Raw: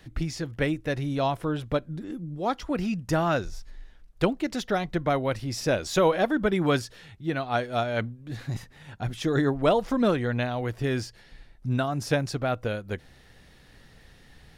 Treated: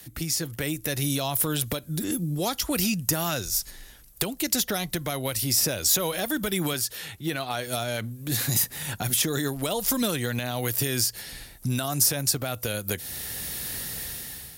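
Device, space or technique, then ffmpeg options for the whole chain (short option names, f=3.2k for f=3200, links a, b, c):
FM broadcast chain: -filter_complex "[0:a]asettb=1/sr,asplit=3[a][b][c];[a]atrim=end=6.734[d];[b]atrim=start=6.73:end=7.67,asetpts=PTS-STARTPTS,afade=t=in:d=0.004:c=qsin,afade=t=out:st=0.936:d=0.004:c=qsin,bass=f=250:g=-6,treble=f=4k:g=-6[e];[c]atrim=start=7.666[f];[d][e]acrossfade=d=0.004:c1=hsin:c2=qsin[g];[g][f]acrossfade=d=0.004:c1=qsin:c2=hsin,highpass=49,dynaudnorm=f=360:g=5:m=15dB,acrossover=split=120|2500[h][i][j];[h]acompressor=threshold=-37dB:ratio=4[k];[i]acompressor=threshold=-27dB:ratio=4[l];[j]acompressor=threshold=-37dB:ratio=4[m];[k][l][m]amix=inputs=3:normalize=0,aemphasis=mode=production:type=50fm,alimiter=limit=-17dB:level=0:latency=1:release=49,asoftclip=type=hard:threshold=-18dB,lowpass=f=15k:w=0.5412,lowpass=f=15k:w=1.3066,aemphasis=mode=production:type=50fm"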